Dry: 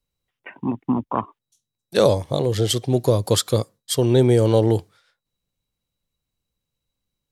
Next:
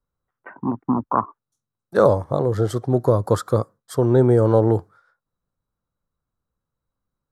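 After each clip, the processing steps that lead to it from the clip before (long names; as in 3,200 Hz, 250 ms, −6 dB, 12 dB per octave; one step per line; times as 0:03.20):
high shelf with overshoot 1,900 Hz −12 dB, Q 3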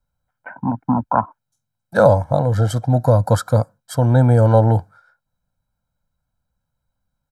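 comb filter 1.3 ms, depth 91%
level +2 dB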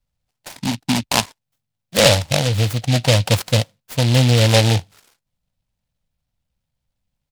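short delay modulated by noise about 3,200 Hz, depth 0.2 ms
level −1 dB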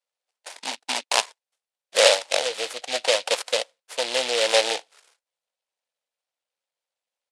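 elliptic band-pass filter 460–9,700 Hz, stop band 60 dB
level −2.5 dB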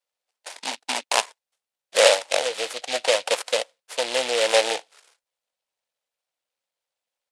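dynamic equaliser 4,400 Hz, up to −4 dB, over −31 dBFS, Q 1
level +1.5 dB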